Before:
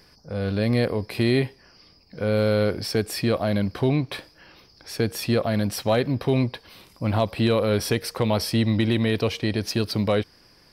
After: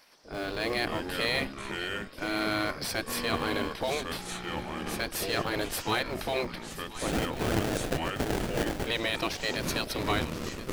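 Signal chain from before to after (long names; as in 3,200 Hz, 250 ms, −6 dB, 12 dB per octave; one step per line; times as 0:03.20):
gate on every frequency bin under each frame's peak −10 dB weak
0:07.07–0:08.87: sample-rate reduction 1,100 Hz, jitter 20%
feedback echo with a high-pass in the loop 1,030 ms, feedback 41%, high-pass 850 Hz, level −13 dB
in parallel at −8 dB: comparator with hysteresis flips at −32.5 dBFS
on the sum: delay with pitch and tempo change per echo 115 ms, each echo −5 semitones, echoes 2, each echo −6 dB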